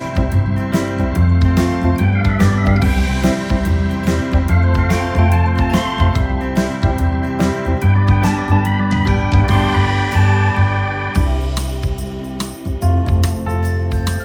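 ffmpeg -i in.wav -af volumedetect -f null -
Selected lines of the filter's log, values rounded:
mean_volume: -14.7 dB
max_volume: -2.1 dB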